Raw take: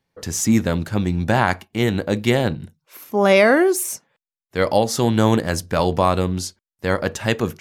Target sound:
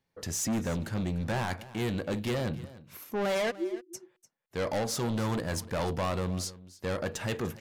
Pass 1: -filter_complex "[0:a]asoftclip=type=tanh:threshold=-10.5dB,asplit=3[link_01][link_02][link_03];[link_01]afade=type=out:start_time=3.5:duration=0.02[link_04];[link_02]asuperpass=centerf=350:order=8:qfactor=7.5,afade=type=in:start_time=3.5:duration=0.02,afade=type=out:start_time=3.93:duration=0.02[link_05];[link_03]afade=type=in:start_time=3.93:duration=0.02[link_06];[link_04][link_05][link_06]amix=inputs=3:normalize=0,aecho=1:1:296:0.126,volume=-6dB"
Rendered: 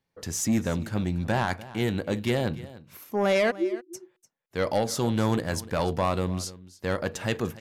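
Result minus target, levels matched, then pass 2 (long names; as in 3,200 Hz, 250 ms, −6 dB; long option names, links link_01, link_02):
soft clipping: distortion −9 dB
-filter_complex "[0:a]asoftclip=type=tanh:threshold=-20.5dB,asplit=3[link_01][link_02][link_03];[link_01]afade=type=out:start_time=3.5:duration=0.02[link_04];[link_02]asuperpass=centerf=350:order=8:qfactor=7.5,afade=type=in:start_time=3.5:duration=0.02,afade=type=out:start_time=3.93:duration=0.02[link_05];[link_03]afade=type=in:start_time=3.93:duration=0.02[link_06];[link_04][link_05][link_06]amix=inputs=3:normalize=0,aecho=1:1:296:0.126,volume=-6dB"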